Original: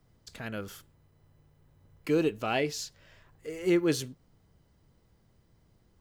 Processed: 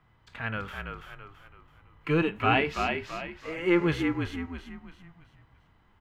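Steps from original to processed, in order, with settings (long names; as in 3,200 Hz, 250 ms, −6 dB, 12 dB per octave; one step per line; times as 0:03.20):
sub-octave generator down 1 octave, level −4 dB
high-shelf EQ 3,100 Hz −11 dB
harmonic and percussive parts rebalanced harmonic +9 dB
flat-topped bell 1,700 Hz +14 dB 2.4 octaves
echo with shifted repeats 332 ms, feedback 39%, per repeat −45 Hz, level −5 dB
level −7.5 dB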